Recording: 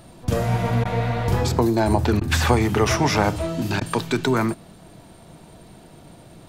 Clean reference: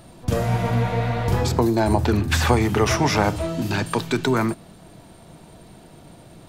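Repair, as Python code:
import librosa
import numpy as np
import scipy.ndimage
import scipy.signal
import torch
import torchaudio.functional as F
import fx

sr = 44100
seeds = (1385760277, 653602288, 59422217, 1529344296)

y = fx.fix_interpolate(x, sr, at_s=(0.84, 2.2, 3.8), length_ms=11.0)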